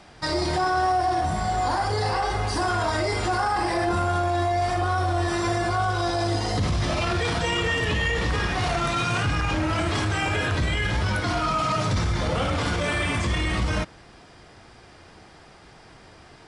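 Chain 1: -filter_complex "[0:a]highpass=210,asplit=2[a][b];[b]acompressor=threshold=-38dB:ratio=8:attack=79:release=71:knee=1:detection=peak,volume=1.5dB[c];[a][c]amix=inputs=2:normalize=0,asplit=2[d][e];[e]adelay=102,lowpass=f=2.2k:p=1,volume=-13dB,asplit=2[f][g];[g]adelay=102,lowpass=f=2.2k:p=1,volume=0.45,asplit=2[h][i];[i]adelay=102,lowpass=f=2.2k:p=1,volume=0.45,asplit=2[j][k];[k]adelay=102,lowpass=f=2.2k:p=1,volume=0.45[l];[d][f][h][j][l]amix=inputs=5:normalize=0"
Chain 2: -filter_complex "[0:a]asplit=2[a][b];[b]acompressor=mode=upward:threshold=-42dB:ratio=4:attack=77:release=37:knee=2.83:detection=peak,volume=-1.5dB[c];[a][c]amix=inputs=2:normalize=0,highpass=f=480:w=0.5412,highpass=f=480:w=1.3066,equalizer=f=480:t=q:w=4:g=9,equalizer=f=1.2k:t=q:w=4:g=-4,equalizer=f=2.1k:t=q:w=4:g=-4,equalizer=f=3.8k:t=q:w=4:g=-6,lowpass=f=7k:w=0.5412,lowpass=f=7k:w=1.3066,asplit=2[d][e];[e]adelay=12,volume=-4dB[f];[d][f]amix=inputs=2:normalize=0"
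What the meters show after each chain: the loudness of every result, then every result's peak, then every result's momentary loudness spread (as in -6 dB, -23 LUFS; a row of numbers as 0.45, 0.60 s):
-22.0, -20.0 LUFS; -10.5, -6.5 dBFS; 3, 22 LU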